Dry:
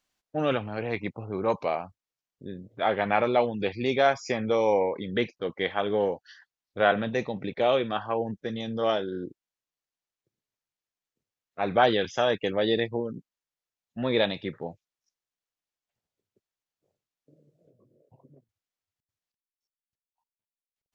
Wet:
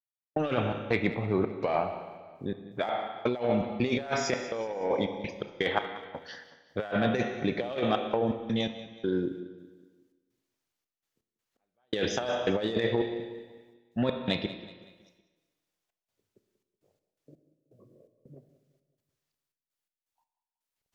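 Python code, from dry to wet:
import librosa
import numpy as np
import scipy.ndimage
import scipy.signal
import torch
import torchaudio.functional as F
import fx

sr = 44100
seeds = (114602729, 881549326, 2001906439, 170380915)

p1 = fx.step_gate(x, sr, bpm=83, pattern='..xx.xxx.xxx.x.x', floor_db=-60.0, edge_ms=4.5)
p2 = fx.rev_schroeder(p1, sr, rt60_s=1.3, comb_ms=25, drr_db=10.0)
p3 = fx.vibrato(p2, sr, rate_hz=0.53, depth_cents=5.8)
p4 = 10.0 ** (-24.0 / 20.0) * np.tanh(p3 / 10.0 ** (-24.0 / 20.0))
p5 = p3 + (p4 * 10.0 ** (-4.0 / 20.0))
p6 = fx.over_compress(p5, sr, threshold_db=-25.0, ratio=-0.5)
p7 = p6 + fx.echo_feedback(p6, sr, ms=187, feedback_pct=46, wet_db=-16.5, dry=0)
y = p7 * 10.0 ** (-1.5 / 20.0)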